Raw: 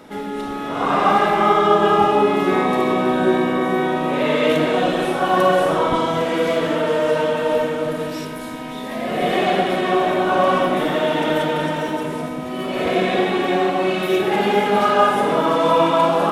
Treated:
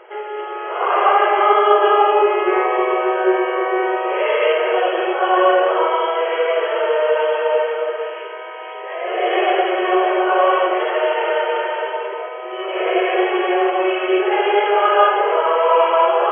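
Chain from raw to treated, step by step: FFT band-pass 340–3300 Hz; trim +2 dB

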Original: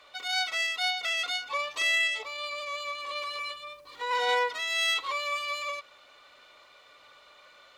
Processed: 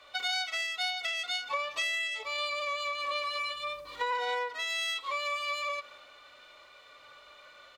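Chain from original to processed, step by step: harmonic-percussive split harmonic +9 dB; compression 12:1, threshold -30 dBFS, peak gain reduction 17 dB; on a send: delay 180 ms -23.5 dB; on the sum: three bands expanded up and down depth 40%

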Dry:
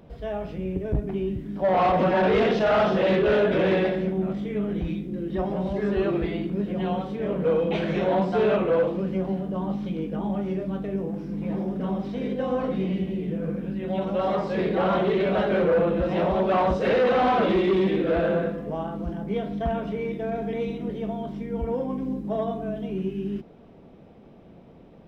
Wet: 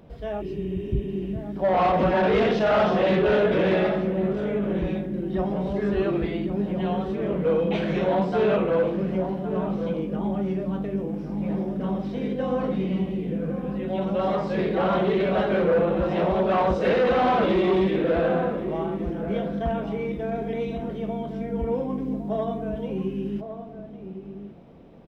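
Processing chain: spectral replace 0.43–1.26 s, 270–3800 Hz after; echo from a far wall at 190 m, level -9 dB

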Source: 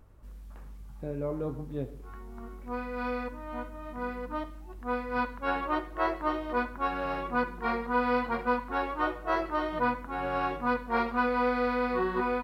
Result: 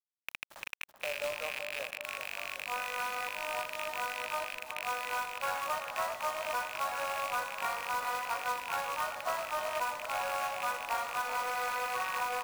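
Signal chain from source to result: rattle on loud lows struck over -41 dBFS, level -26 dBFS; steep high-pass 550 Hz 72 dB/octave; compression 8:1, threshold -37 dBFS, peak gain reduction 13.5 dB; companded quantiser 4-bit; tape echo 383 ms, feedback 71%, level -7 dB, low-pass 1.2 kHz; trim +5 dB

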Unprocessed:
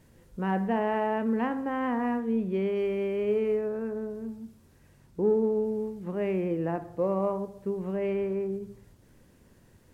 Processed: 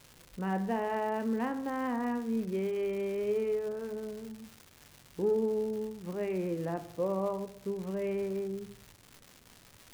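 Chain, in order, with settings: crackle 340 per s -36 dBFS; flange 0.23 Hz, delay 6.5 ms, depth 1.2 ms, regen -80%

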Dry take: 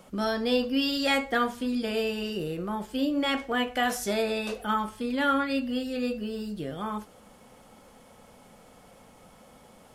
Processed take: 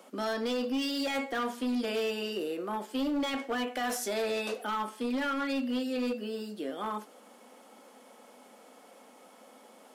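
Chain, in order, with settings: peak limiter -21 dBFS, peak gain reduction 7.5 dB; Chebyshev high-pass 240 Hz, order 4; hard clipper -27 dBFS, distortion -14 dB

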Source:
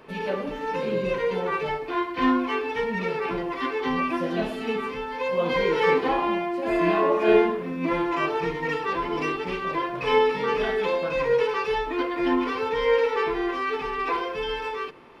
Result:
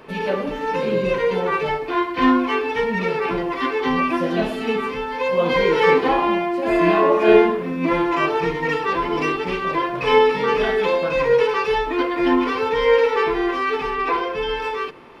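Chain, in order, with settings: 13.93–14.60 s: treble shelf 4.5 kHz -5.5 dB; trim +5.5 dB

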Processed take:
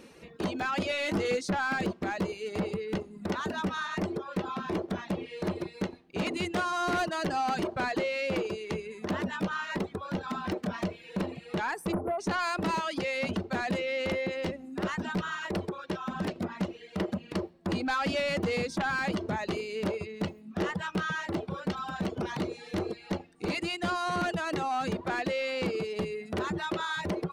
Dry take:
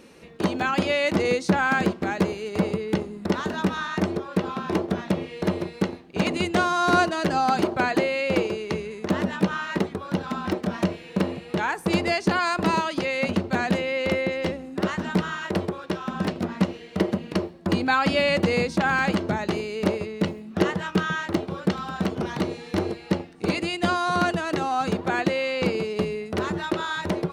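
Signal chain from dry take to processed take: reverb removal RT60 0.63 s; 11.92–12.20 s: spectral selection erased 1.5–9.4 kHz; in parallel at -1.5 dB: peak limiter -21.5 dBFS, peak gain reduction 14 dB; on the sum: saturation -16.5 dBFS, distortion -13 dB; 0.89–1.41 s: doubling 20 ms -6 dB; trim -7 dB

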